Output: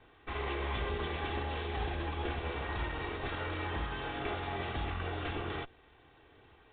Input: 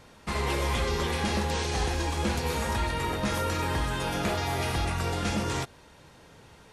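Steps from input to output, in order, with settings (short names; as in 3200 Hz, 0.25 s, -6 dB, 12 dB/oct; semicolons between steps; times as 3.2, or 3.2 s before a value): minimum comb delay 2.6 ms; gain -6 dB; µ-law 64 kbps 8000 Hz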